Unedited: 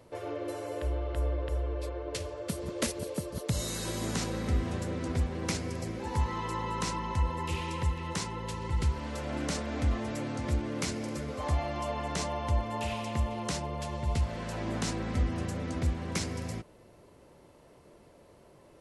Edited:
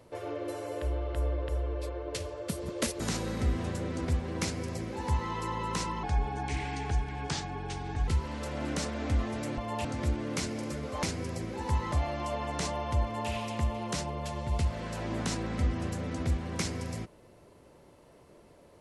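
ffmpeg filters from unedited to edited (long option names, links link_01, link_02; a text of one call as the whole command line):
ffmpeg -i in.wav -filter_complex "[0:a]asplit=8[link_01][link_02][link_03][link_04][link_05][link_06][link_07][link_08];[link_01]atrim=end=3.002[link_09];[link_02]atrim=start=4.068:end=7.104[link_10];[link_03]atrim=start=7.1:end=8.8,asetpts=PTS-STARTPTS,asetrate=36603,aresample=44100,atrim=end_sample=90325,asetpts=PTS-STARTPTS[link_11];[link_04]atrim=start=8.796:end=10.302[link_12];[link_05]atrim=start=12.598:end=12.872[link_13];[link_06]atrim=start=10.298:end=11.482[link_14];[link_07]atrim=start=5.488:end=6.382[link_15];[link_08]atrim=start=11.478[link_16];[link_09][link_10]acrossfade=duration=0.004:curve1=hsin:curve2=hsin[link_17];[link_17][link_11]acrossfade=duration=0.004:curve1=hsin:curve2=hsin[link_18];[link_18][link_12]acrossfade=duration=0.004:curve1=hsin:curve2=hsin[link_19];[link_19][link_13]acrossfade=duration=0.004:curve1=hsin:curve2=hsin[link_20];[link_20][link_14]acrossfade=duration=0.004:curve1=hsin:curve2=hsin[link_21];[link_21][link_15]acrossfade=duration=0.004:curve1=hsin:curve2=hsin[link_22];[link_22][link_16]acrossfade=duration=0.004:curve1=hsin:curve2=hsin" out.wav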